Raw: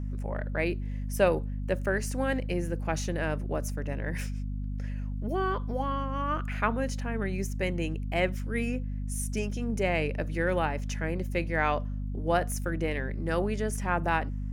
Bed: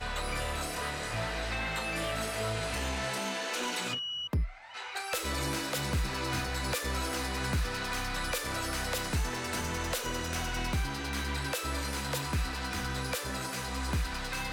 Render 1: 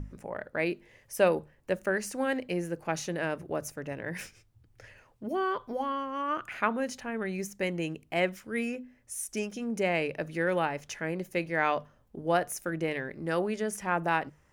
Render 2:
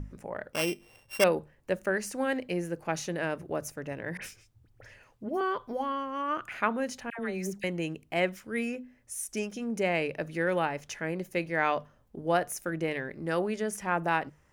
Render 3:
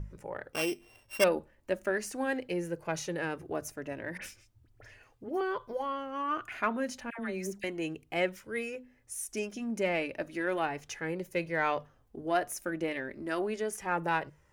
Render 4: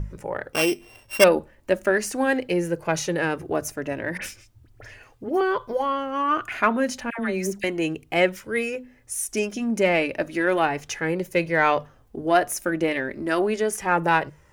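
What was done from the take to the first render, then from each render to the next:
hum notches 50/100/150/200/250 Hz
0.53–1.24 s: sorted samples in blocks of 16 samples; 4.17–5.41 s: phase dispersion highs, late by 53 ms, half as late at 2.1 kHz; 7.10–7.64 s: phase dispersion lows, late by 90 ms, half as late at 1 kHz
in parallel at -11 dB: saturation -23.5 dBFS, distortion -12 dB; on the sum: flange 0.35 Hz, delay 1.9 ms, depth 1.6 ms, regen -39%
trim +10 dB

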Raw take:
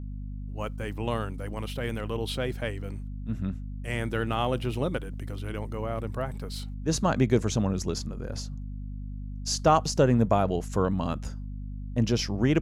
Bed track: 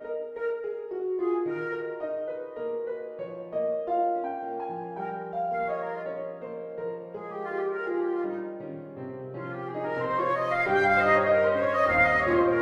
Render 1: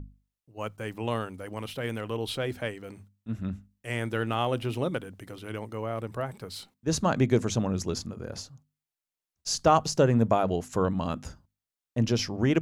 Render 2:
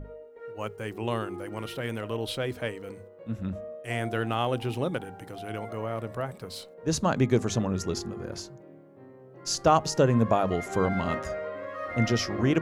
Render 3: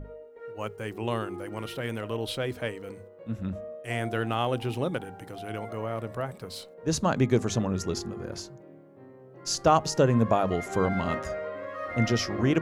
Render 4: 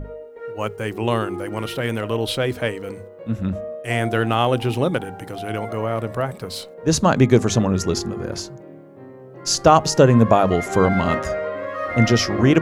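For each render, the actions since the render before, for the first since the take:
hum notches 50/100/150/200/250 Hz
add bed track -12 dB
no audible change
trim +9 dB; peak limiter -1 dBFS, peak gain reduction 1.5 dB

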